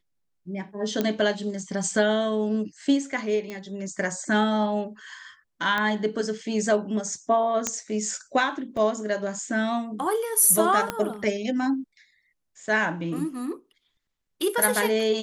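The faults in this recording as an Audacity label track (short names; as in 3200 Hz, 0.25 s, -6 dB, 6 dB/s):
1.010000	1.010000	pop -11 dBFS
3.500000	3.500000	pop -21 dBFS
5.780000	5.780000	pop -13 dBFS
7.670000	7.670000	pop -9 dBFS
8.770000	8.770000	gap 2.3 ms
10.900000	10.900000	pop -11 dBFS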